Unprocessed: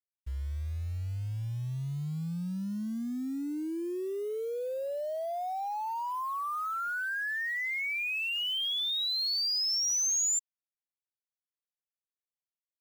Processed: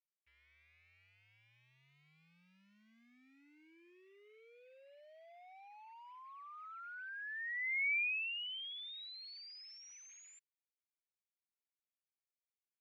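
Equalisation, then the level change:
resonant band-pass 2,300 Hz, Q 5.5
high-frequency loss of the air 91 metres
0.0 dB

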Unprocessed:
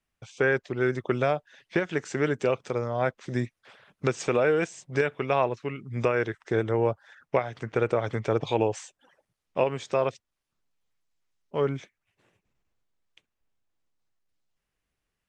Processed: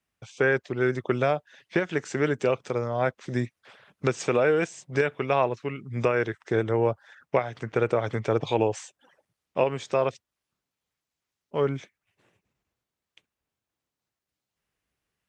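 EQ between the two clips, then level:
high-pass filter 59 Hz
+1.0 dB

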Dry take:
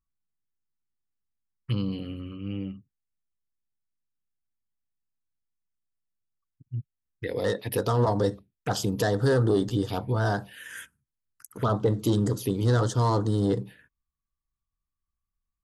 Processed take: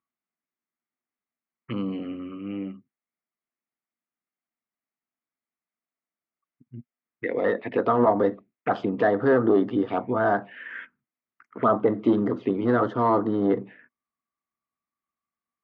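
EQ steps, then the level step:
loudspeaker in its box 240–2,500 Hz, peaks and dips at 240 Hz +9 dB, 350 Hz +4 dB, 670 Hz +7 dB, 1,200 Hz +6 dB, 2,100 Hz +7 dB
+1.5 dB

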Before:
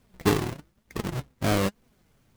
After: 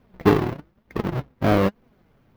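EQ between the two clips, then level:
low-shelf EQ 160 Hz −5.5 dB
high-shelf EQ 2,300 Hz −11.5 dB
parametric band 8,200 Hz −12.5 dB 0.93 octaves
+8.0 dB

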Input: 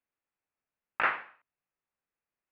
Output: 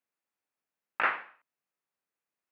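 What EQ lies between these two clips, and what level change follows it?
high-pass filter 160 Hz
0.0 dB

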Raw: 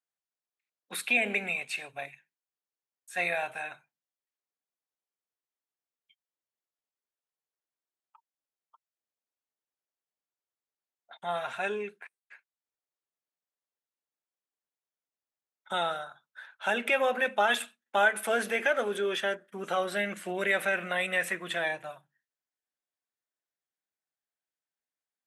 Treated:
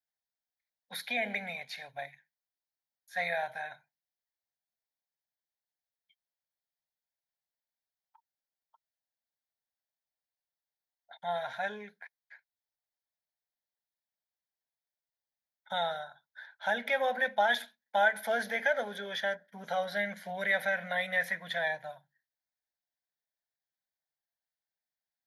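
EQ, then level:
phaser with its sweep stopped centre 1,800 Hz, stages 8
0.0 dB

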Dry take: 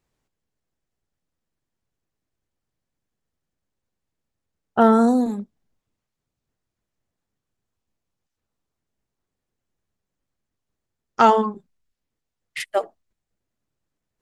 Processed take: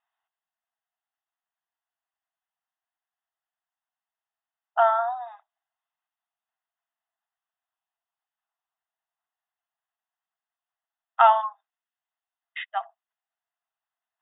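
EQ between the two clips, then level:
linear-phase brick-wall band-pass 640–3,800 Hz
Butterworth band-reject 2,300 Hz, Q 6.8
high-frequency loss of the air 200 metres
0.0 dB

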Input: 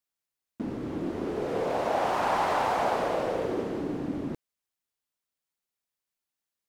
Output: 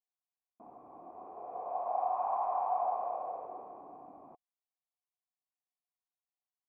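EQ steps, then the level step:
formant resonators in series a
low-shelf EQ 220 Hz −7.5 dB
+1.5 dB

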